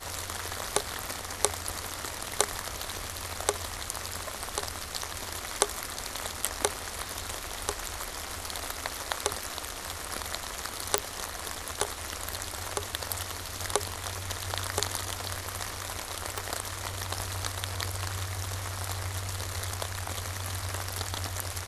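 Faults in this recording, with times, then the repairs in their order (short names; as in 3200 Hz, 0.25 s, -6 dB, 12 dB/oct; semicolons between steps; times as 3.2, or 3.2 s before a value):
10.98 pop -3 dBFS
16.38 pop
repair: de-click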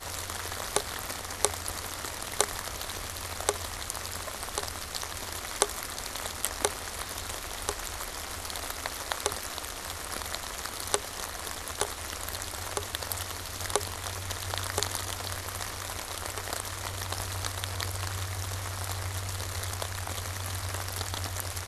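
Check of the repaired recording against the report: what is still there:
none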